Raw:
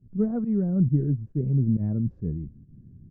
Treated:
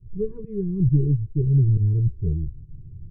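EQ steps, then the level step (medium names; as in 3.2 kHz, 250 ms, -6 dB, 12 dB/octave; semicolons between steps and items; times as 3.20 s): Chebyshev band-stop 450–950 Hz, order 5; tilt EQ -3 dB/octave; static phaser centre 560 Hz, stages 4; +2.0 dB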